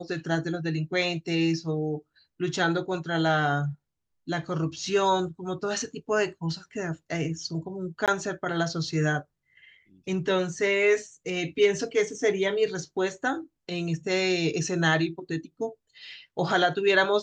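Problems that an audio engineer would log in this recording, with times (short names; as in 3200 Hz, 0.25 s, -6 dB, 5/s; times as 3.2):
8.06–8.08 gap 17 ms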